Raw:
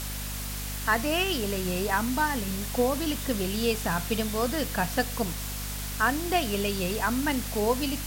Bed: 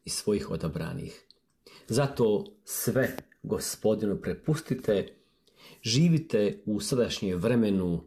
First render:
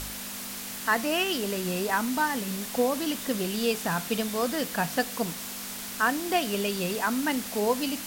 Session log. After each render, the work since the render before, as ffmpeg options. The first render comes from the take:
-af "bandreject=f=50:t=h:w=4,bandreject=f=100:t=h:w=4,bandreject=f=150:t=h:w=4"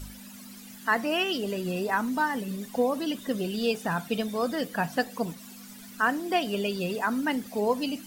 -af "afftdn=nr=15:nf=-37"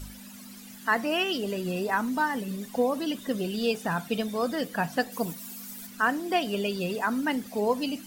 -filter_complex "[0:a]asettb=1/sr,asplit=3[a][b][c];[a]atrim=end=5.124[d];[b]atrim=start=5.12:end=5.87,asetpts=PTS-STARTPTS,afade=t=in:d=0.004:c=qsin,afade=t=out:st=0.746:d=0.004:c=qsin,highshelf=f=9.1k:g=12[e];[c]atrim=start=5.866[f];[d][e]acrossfade=d=0.004:c1=hsin:c2=qsin[g];[g][f]acrossfade=d=0.004:c1=qsin:c2=hsin"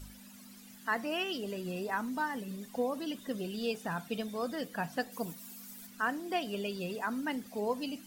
-af "volume=-7.5dB"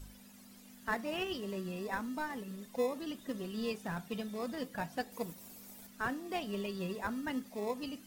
-filter_complex "[0:a]flanger=delay=1.9:depth=3.5:regen=70:speed=0.37:shape=sinusoidal,asplit=2[a][b];[b]acrusher=samples=29:mix=1:aa=0.000001,volume=-9.5dB[c];[a][c]amix=inputs=2:normalize=0"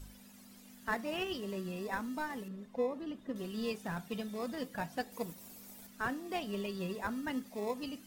-filter_complex "[0:a]asettb=1/sr,asplit=3[a][b][c];[a]atrim=end=2.484[d];[b]atrim=start=2.48:end=3.36,asetpts=PTS-STARTPTS,afade=t=in:d=0.004:c=qsin,afade=t=out:st=0.876:d=0.004:c=qsin,lowpass=f=1.3k:p=1[e];[c]atrim=start=3.356[f];[d][e]acrossfade=d=0.004:c1=hsin:c2=qsin[g];[g][f]acrossfade=d=0.004:c1=qsin:c2=hsin"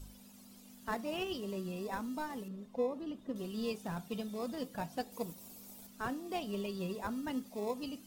-af "equalizer=f=1.8k:w=1.8:g=-7.5"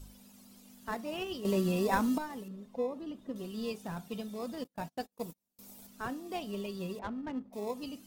-filter_complex "[0:a]asettb=1/sr,asplit=3[a][b][c];[a]atrim=end=4.644[d];[b]atrim=start=4.64:end=5.59,asetpts=PTS-STARTPTS,afade=t=in:d=0.004:c=qsin,afade=t=out:st=0.946:d=0.004:c=qsin,agate=range=-35dB:threshold=-46dB:ratio=16:release=100:detection=peak[e];[c]atrim=start=5.586[f];[d][e]acrossfade=d=0.004:c1=hsin:c2=qsin[g];[g][f]acrossfade=d=0.004:c1=qsin:c2=hsin,asettb=1/sr,asplit=3[h][i][j];[h]atrim=end=6.994[k];[i]atrim=start=6.99:end=7.53,asetpts=PTS-STARTPTS,afade=t=in:d=0.004:c=qsin,afade=t=out:st=0.536:d=0.004:c=qsin,adynamicsmooth=sensitivity=7.5:basefreq=710[l];[j]atrim=start=7.526[m];[k][l]acrossfade=d=0.004:c1=hsin:c2=qsin[n];[n][m]acrossfade=d=0.004:c1=qsin:c2=hsin,asplit=3[o][p][q];[o]atrim=end=1.452[r];[p]atrim=start=1.448:end=2.182,asetpts=PTS-STARTPTS,volume=10.5dB[s];[q]atrim=start=2.178[t];[r][s]acrossfade=d=0.004:c1=hsin:c2=hsin[u];[u][t]acrossfade=d=0.004:c1=hsin:c2=hsin"

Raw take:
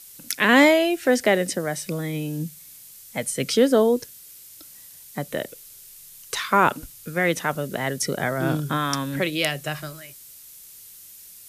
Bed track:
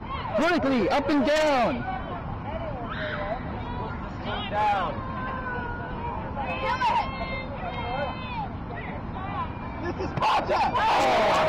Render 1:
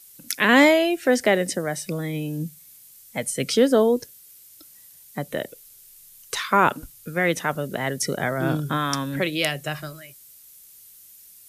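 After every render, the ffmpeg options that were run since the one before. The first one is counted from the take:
-af "afftdn=nr=6:nf=-46"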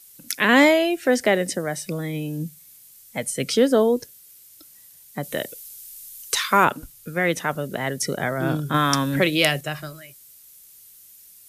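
-filter_complex "[0:a]asettb=1/sr,asplit=3[a][b][c];[a]atrim=end=5.234[d];[b]atrim=start=5.23:end=6.65,asetpts=PTS-STARTPTS,afade=t=in:d=0.004:c=qsin,afade=t=out:st=1.416:d=0.004:c=qsin,highshelf=f=2.9k:g=8.5[e];[c]atrim=start=6.646[f];[d][e]acrossfade=d=0.004:c1=hsin:c2=qsin[g];[g][f]acrossfade=d=0.004:c1=qsin:c2=hsin,asettb=1/sr,asplit=3[h][i][j];[h]atrim=end=8.744[k];[i]atrim=start=8.74:end=9.61,asetpts=PTS-STARTPTS,afade=t=in:d=0.004:c=qsin,afade=t=out:st=0.866:d=0.004:c=qsin,acontrast=25[l];[j]atrim=start=9.606[m];[k][l]acrossfade=d=0.004:c1=hsin:c2=qsin[n];[n][m]acrossfade=d=0.004:c1=qsin:c2=hsin"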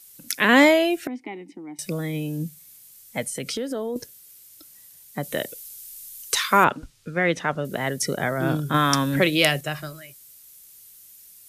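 -filter_complex "[0:a]asettb=1/sr,asplit=3[a][b][c];[a]atrim=end=1.074[d];[b]atrim=start=1.07:end=1.79,asetpts=PTS-STARTPTS,afade=t=in:d=0.004:c=qsin,afade=t=out:st=0.716:d=0.004:c=qsin,asplit=3[e][f][g];[e]bandpass=f=300:t=q:w=8,volume=0dB[h];[f]bandpass=f=870:t=q:w=8,volume=-6dB[i];[g]bandpass=f=2.24k:t=q:w=8,volume=-9dB[j];[h][i][j]amix=inputs=3:normalize=0[k];[c]atrim=start=1.786[l];[d][k]acrossfade=d=0.004:c1=hsin:c2=qsin[m];[m][l]acrossfade=d=0.004:c1=qsin:c2=hsin,asettb=1/sr,asplit=3[n][o][p];[n]atrim=end=3.234[q];[o]atrim=start=3.23:end=3.96,asetpts=PTS-STARTPTS,afade=t=in:d=0.004:c=qsin,afade=t=out:st=0.726:d=0.004:c=qsin,acompressor=threshold=-26dB:ratio=5:attack=3.2:release=140:knee=1:detection=peak[r];[p]atrim=start=3.956[s];[q][r]acrossfade=d=0.004:c1=hsin:c2=qsin[t];[t][s]acrossfade=d=0.004:c1=qsin:c2=hsin,asettb=1/sr,asplit=3[u][v][w];[u]atrim=end=6.644[x];[v]atrim=start=6.64:end=7.65,asetpts=PTS-STARTPTS,afade=t=in:d=0.004:c=qsin,afade=t=out:st=1.006:d=0.004:c=qsin,lowpass=5.1k[y];[w]atrim=start=7.646[z];[x][y]acrossfade=d=0.004:c1=hsin:c2=qsin[aa];[aa][z]acrossfade=d=0.004:c1=qsin:c2=hsin"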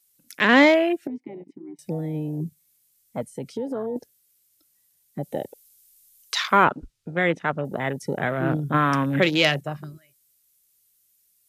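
-af "afwtdn=0.0355"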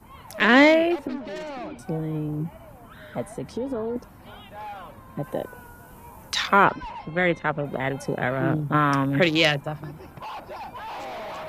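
-filter_complex "[1:a]volume=-13.5dB[a];[0:a][a]amix=inputs=2:normalize=0"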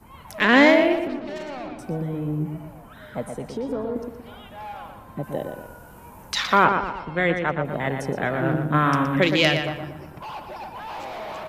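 -filter_complex "[0:a]asplit=2[a][b];[b]adelay=119,lowpass=f=3.6k:p=1,volume=-6dB,asplit=2[c][d];[d]adelay=119,lowpass=f=3.6k:p=1,volume=0.44,asplit=2[e][f];[f]adelay=119,lowpass=f=3.6k:p=1,volume=0.44,asplit=2[g][h];[h]adelay=119,lowpass=f=3.6k:p=1,volume=0.44,asplit=2[i][j];[j]adelay=119,lowpass=f=3.6k:p=1,volume=0.44[k];[a][c][e][g][i][k]amix=inputs=6:normalize=0"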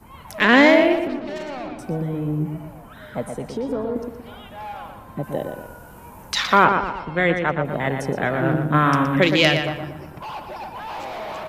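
-af "volume=2.5dB,alimiter=limit=-2dB:level=0:latency=1"

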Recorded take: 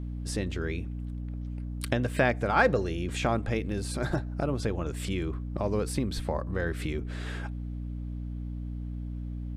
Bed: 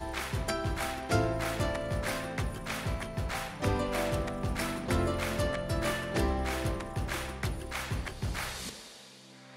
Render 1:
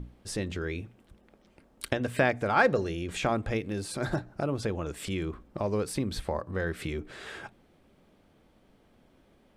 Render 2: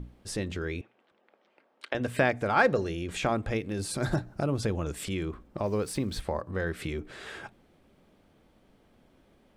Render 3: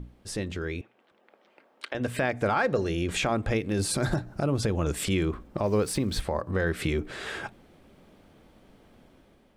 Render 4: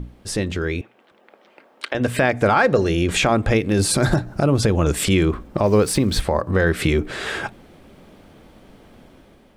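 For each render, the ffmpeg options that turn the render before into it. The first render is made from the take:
-af "bandreject=f=60:t=h:w=6,bandreject=f=120:t=h:w=6,bandreject=f=180:t=h:w=6,bandreject=f=240:t=h:w=6,bandreject=f=300:t=h:w=6"
-filter_complex "[0:a]asettb=1/sr,asplit=3[a][b][c];[a]atrim=end=0.814[d];[b]atrim=start=0.81:end=1.95,asetpts=PTS-STARTPTS,afade=t=in:d=0.004:c=qsin,afade=t=out:st=1.136:d=0.004:c=qsin,highpass=520,lowpass=3.3k[e];[c]atrim=start=1.946[f];[d][e]acrossfade=d=0.004:c1=hsin:c2=qsin[g];[g][f]acrossfade=d=0.004:c1=qsin:c2=hsin,asettb=1/sr,asplit=3[h][i][j];[h]atrim=end=3.794[k];[i]atrim=start=3.79:end=5.04,asetpts=PTS-STARTPTS,afade=t=in:d=0.004:c=qsin,afade=t=out:st=1.246:d=0.004:c=qsin,bass=f=250:g=4,treble=f=4k:g=4[l];[j]atrim=start=5.036[m];[k][l]acrossfade=d=0.004:c1=hsin:c2=qsin[n];[n][m]acrossfade=d=0.004:c1=qsin:c2=hsin,asettb=1/sr,asplit=3[o][p][q];[o]atrim=end=5.644[r];[p]atrim=start=5.64:end=6.21,asetpts=PTS-STARTPTS,afade=t=in:d=0.004:c=qsin,afade=t=out:st=0.566:d=0.004:c=qsin,aeval=exprs='val(0)*gte(abs(val(0)),0.00282)':c=same[s];[q]atrim=start=6.206[t];[r][s]acrossfade=d=0.004:c1=hsin:c2=qsin[u];[u][t]acrossfade=d=0.004:c1=qsin:c2=hsin"
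-af "dynaudnorm=f=750:g=3:m=6.5dB,alimiter=limit=-15.5dB:level=0:latency=1:release=243"
-af "volume=9dB"

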